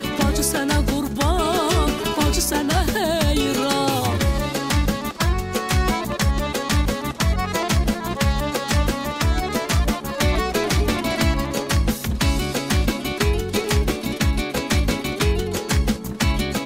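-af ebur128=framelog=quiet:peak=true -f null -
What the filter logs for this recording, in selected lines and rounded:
Integrated loudness:
  I:         -21.3 LUFS
  Threshold: -31.3 LUFS
Loudness range:
  LRA:         1.8 LU
  Threshold: -41.3 LUFS
  LRA low:   -21.9 LUFS
  LRA high:  -20.1 LUFS
True peak:
  Peak:       -8.6 dBFS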